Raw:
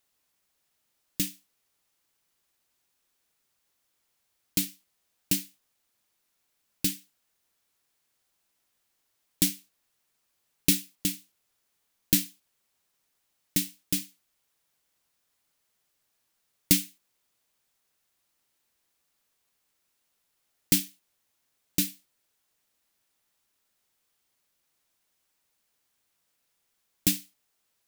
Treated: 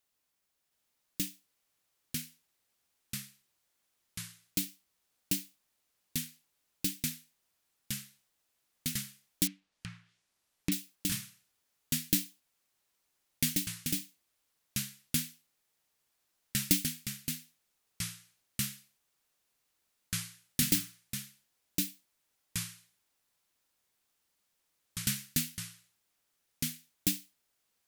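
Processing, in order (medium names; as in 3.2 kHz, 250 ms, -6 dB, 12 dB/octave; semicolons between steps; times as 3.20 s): ever faster or slower copies 720 ms, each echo -3 st, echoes 3; 9.47–10.72 s: low-pass that closes with the level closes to 2 kHz, closed at -36.5 dBFS; trim -5.5 dB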